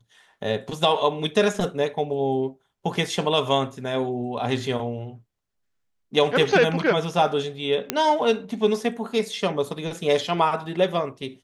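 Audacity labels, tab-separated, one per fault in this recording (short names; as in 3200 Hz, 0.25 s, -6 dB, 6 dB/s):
7.900000	7.900000	pop -5 dBFS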